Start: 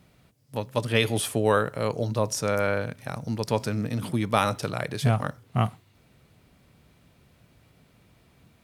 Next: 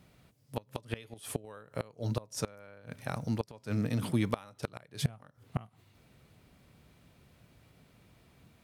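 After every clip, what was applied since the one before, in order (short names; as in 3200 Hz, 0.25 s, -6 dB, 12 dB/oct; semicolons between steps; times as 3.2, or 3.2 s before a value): flipped gate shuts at -15 dBFS, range -25 dB; gain -2.5 dB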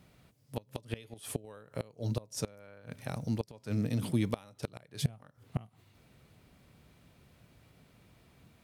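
dynamic EQ 1300 Hz, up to -7 dB, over -53 dBFS, Q 0.9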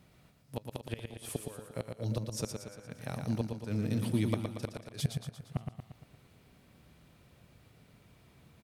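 feedback echo 0.116 s, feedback 53%, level -5.5 dB; gain -1 dB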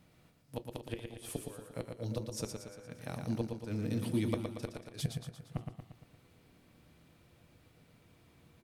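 on a send at -12.5 dB: bell 330 Hz +14 dB 0.59 oct + reverb RT60 0.15 s, pre-delay 3 ms; on the sum: gain -2.5 dB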